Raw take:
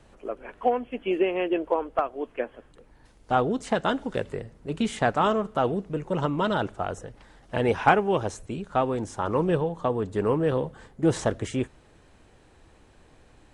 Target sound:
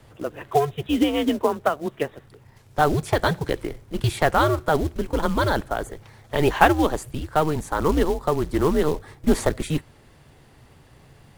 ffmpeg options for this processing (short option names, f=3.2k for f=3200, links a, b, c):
-af "afreqshift=-130,acrusher=bits=5:mode=log:mix=0:aa=0.000001,asetrate=52479,aresample=44100,volume=4dB"